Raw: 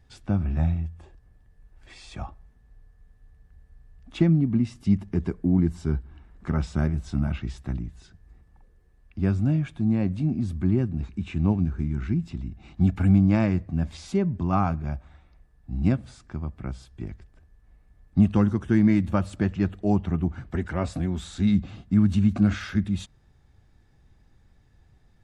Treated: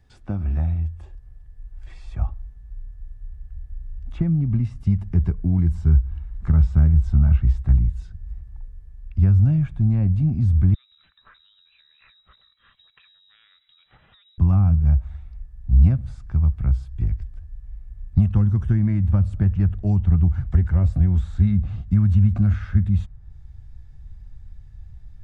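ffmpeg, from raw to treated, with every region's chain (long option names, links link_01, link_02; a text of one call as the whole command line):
ffmpeg -i in.wav -filter_complex "[0:a]asettb=1/sr,asplit=3[link_01][link_02][link_03];[link_01]atrim=end=10.744[link_04];[link_02]atrim=start=10.74:end=14.38,asetpts=PTS-STARTPTS,afade=type=in:duration=0.004:curve=qsin,afade=type=out:start_time=3.636:duration=0.004:curve=qsin,highpass=frequency=810:poles=1,acompressor=threshold=-44dB:ratio=10:attack=3.2:release=140:knee=1:detection=peak,lowpass=frequency=3400:width_type=q:width=0.5098,lowpass=frequency=3400:width_type=q:width=0.6013,lowpass=frequency=3400:width_type=q:width=0.9,lowpass=frequency=3400:width_type=q:width=2.563,afreqshift=-4000[link_05];[link_03]atrim=start=14.376[link_06];[link_04][link_05]acrossfade=duration=0.004:curve1=hsin:curve2=qsin[link_07];[link_07][link_06]acrossfade=duration=0.004:curve1=qsin:curve2=hsin,acrossover=split=480|1900[link_08][link_09][link_10];[link_08]acompressor=threshold=-22dB:ratio=4[link_11];[link_09]acompressor=threshold=-40dB:ratio=4[link_12];[link_10]acompressor=threshold=-60dB:ratio=4[link_13];[link_11][link_12][link_13]amix=inputs=3:normalize=0,asubboost=boost=12:cutoff=89" out.wav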